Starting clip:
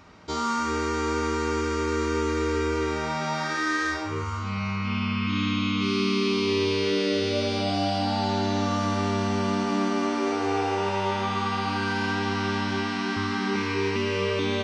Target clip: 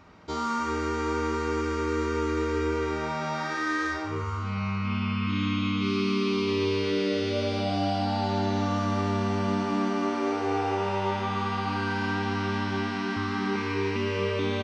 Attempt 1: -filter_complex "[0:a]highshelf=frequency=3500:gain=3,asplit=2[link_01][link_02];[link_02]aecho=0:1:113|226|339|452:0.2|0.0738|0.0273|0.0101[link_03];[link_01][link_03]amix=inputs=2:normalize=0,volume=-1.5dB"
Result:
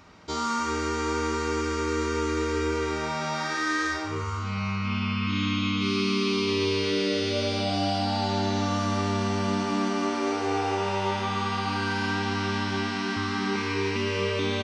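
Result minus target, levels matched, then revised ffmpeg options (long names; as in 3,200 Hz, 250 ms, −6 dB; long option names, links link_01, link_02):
8,000 Hz band +7.0 dB
-filter_complex "[0:a]highshelf=frequency=3500:gain=-7,asplit=2[link_01][link_02];[link_02]aecho=0:1:113|226|339|452:0.2|0.0738|0.0273|0.0101[link_03];[link_01][link_03]amix=inputs=2:normalize=0,volume=-1.5dB"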